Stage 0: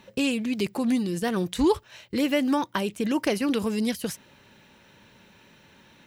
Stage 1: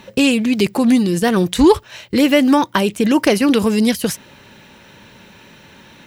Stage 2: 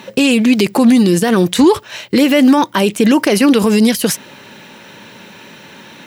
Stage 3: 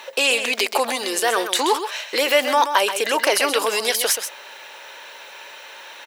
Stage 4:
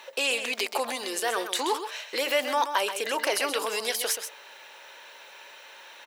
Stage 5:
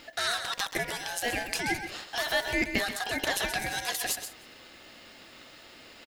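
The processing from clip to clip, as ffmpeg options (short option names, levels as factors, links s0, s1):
-af "acontrast=72,volume=1.68"
-af "highpass=160,alimiter=level_in=2.66:limit=0.891:release=50:level=0:latency=1,volume=0.841"
-af "highpass=f=530:w=0.5412,highpass=f=530:w=1.3066,aecho=1:1:129:0.355,volume=0.891"
-af "bandreject=f=149.5:t=h:w=4,bandreject=f=299:t=h:w=4,bandreject=f=448.5:t=h:w=4,bandreject=f=598:t=h:w=4,bandreject=f=747.5:t=h:w=4,bandreject=f=897:t=h:w=4,bandreject=f=1046.5:t=h:w=4,bandreject=f=1196:t=h:w=4,bandreject=f=1345.5:t=h:w=4,volume=0.398"
-af "aeval=exprs='val(0)*sin(2*PI*1200*n/s)':c=same,aecho=1:1:176:0.0891"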